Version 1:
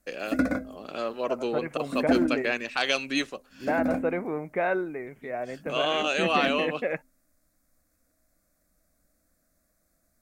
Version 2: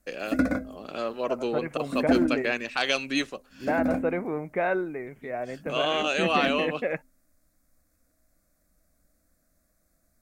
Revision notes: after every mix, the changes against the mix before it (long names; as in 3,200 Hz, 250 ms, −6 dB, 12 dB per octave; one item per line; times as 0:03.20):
master: add low-shelf EQ 150 Hz +4 dB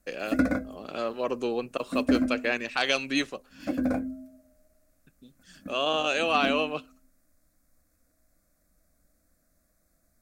second voice: muted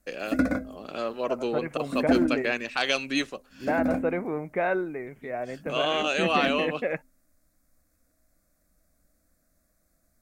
second voice: unmuted